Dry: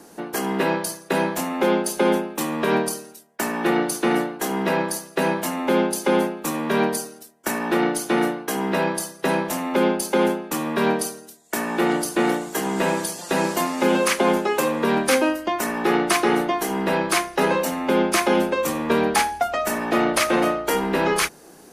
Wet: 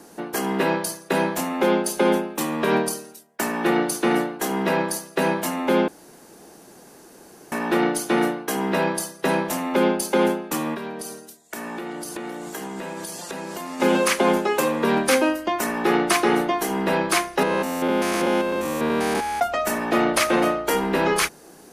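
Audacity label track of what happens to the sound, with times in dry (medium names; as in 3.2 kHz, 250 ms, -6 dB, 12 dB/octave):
5.880000	7.520000	room tone
10.740000	13.800000	compression 12:1, threshold -28 dBFS
17.430000	19.410000	spectrogram pixelated in time every 200 ms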